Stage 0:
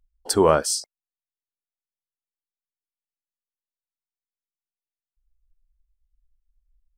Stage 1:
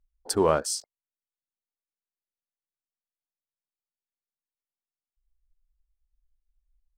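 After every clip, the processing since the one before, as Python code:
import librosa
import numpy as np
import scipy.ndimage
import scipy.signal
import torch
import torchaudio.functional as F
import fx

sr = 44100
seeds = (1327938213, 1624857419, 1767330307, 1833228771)

y = fx.wiener(x, sr, points=15)
y = y * librosa.db_to_amplitude(-5.0)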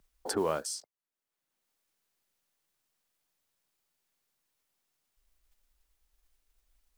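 y = fx.mod_noise(x, sr, seeds[0], snr_db=31)
y = fx.band_squash(y, sr, depth_pct=70)
y = y * librosa.db_to_amplitude(-6.0)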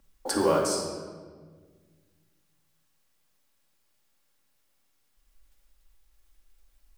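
y = fx.room_shoebox(x, sr, seeds[1], volume_m3=1700.0, walls='mixed', distance_m=2.3)
y = y * librosa.db_to_amplitude(3.0)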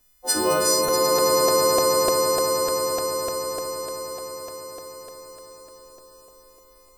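y = fx.freq_snap(x, sr, grid_st=3)
y = fx.echo_swell(y, sr, ms=107, loudest=8, wet_db=-5)
y = fx.buffer_crackle(y, sr, first_s=0.88, period_s=0.3, block=128, kind='repeat')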